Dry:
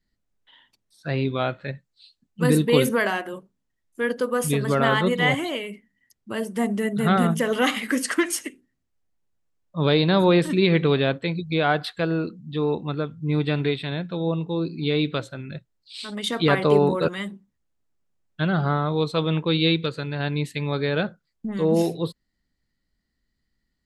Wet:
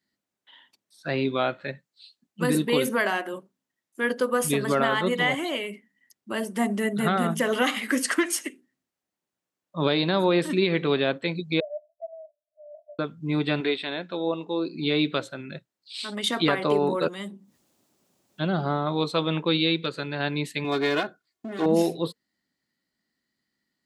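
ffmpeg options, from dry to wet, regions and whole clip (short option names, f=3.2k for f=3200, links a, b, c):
-filter_complex "[0:a]asettb=1/sr,asplit=3[a][b][c];[a]atrim=end=11.604[d];[b]atrim=start=11.6:end=12.99,asetpts=PTS-STARTPTS,afade=t=in:d=0.004:c=qsin,afade=t=out:st=1.386:d=0.004:c=qsin,asuperpass=centerf=630:order=12:qfactor=6.7,acompressor=threshold=-42dB:ratio=1.5:attack=3.2:release=140:knee=1:detection=peak[e];[c]atrim=start=12.986[f];[d][e]acrossfade=d=0.004:c1=hsin:c2=qsin[g];[g][f]acrossfade=d=0.004:c1=qsin:c2=hsin,asettb=1/sr,asplit=3[h][i][j];[h]atrim=end=13.604[k];[i]atrim=start=13.6:end=14.75,asetpts=PTS-STARTPTS,afade=t=in:d=0.004:c=qsin,afade=t=out:st=1.146:d=0.004:c=qsin,lowpass=8.3k,equalizer=f=140:t=o:w=0.81:g=-14[l];[j]atrim=start=14.746[m];[k][l]acrossfade=d=0.004:c1=hsin:c2=qsin[n];[n][m]acrossfade=d=0.004:c1=qsin:c2=hsin,asettb=1/sr,asplit=3[o][p][q];[o]atrim=end=17.074[r];[p]atrim=start=17.07:end=18.87,asetpts=PTS-STARTPTS,afade=t=in:d=0.004:c=qsin,afade=t=out:st=1.796:d=0.004:c=qsin,equalizer=f=1.7k:w=0.94:g=-8,acompressor=mode=upward:threshold=-37dB:ratio=2.5:attack=3.2:release=140:knee=2.83:detection=peak[s];[q]atrim=start=18.866[t];[r][s]acrossfade=d=0.004:c1=hsin:c2=qsin[u];[u][t]acrossfade=d=0.004:c1=qsin:c2=hsin,asettb=1/sr,asplit=3[v][w][x];[v]atrim=end=20.644[y];[w]atrim=start=20.64:end=21.66,asetpts=PTS-STARTPTS,afade=t=in:d=0.004:c=qsin,afade=t=out:st=1.016:d=0.004:c=qsin,aeval=exprs='clip(val(0),-1,0.0355)':c=same,aecho=1:1:2.8:0.67,atrim=end_sample=44982[z];[x]atrim=start=21.656[aa];[y][z]acrossfade=d=0.004:c1=hsin:c2=qsin[ab];[ab][aa]acrossfade=d=0.004:c1=qsin:c2=hsin,highpass=220,bandreject=f=460:w=12,alimiter=limit=-13dB:level=0:latency=1:release=375,volume=1.5dB"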